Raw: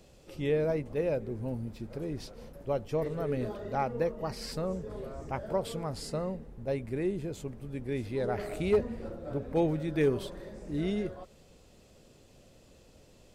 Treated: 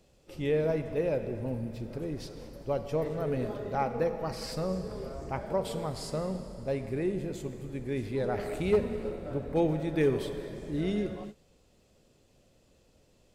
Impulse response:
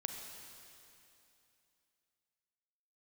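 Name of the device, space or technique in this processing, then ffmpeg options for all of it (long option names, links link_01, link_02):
keyed gated reverb: -filter_complex "[0:a]asplit=3[link_01][link_02][link_03];[1:a]atrim=start_sample=2205[link_04];[link_02][link_04]afir=irnorm=-1:irlink=0[link_05];[link_03]apad=whole_len=588489[link_06];[link_05][link_06]sidechaingate=range=-33dB:threshold=-50dB:ratio=16:detection=peak,volume=3.5dB[link_07];[link_01][link_07]amix=inputs=2:normalize=0,volume=-6.5dB"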